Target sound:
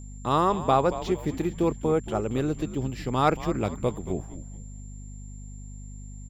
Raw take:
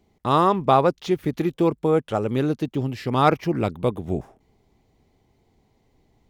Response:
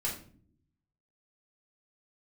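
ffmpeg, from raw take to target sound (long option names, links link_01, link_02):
-filter_complex "[0:a]aeval=exprs='val(0)+0.0178*(sin(2*PI*50*n/s)+sin(2*PI*2*50*n/s)/2+sin(2*PI*3*50*n/s)/3+sin(2*PI*4*50*n/s)/4+sin(2*PI*5*50*n/s)/5)':channel_layout=same,asplit=2[link_01][link_02];[link_02]asplit=4[link_03][link_04][link_05][link_06];[link_03]adelay=227,afreqshift=-100,volume=-13dB[link_07];[link_04]adelay=454,afreqshift=-200,volume=-21.4dB[link_08];[link_05]adelay=681,afreqshift=-300,volume=-29.8dB[link_09];[link_06]adelay=908,afreqshift=-400,volume=-38.2dB[link_10];[link_07][link_08][link_09][link_10]amix=inputs=4:normalize=0[link_11];[link_01][link_11]amix=inputs=2:normalize=0,aeval=exprs='val(0)+0.00447*sin(2*PI*7300*n/s)':channel_layout=same,volume=-4.5dB"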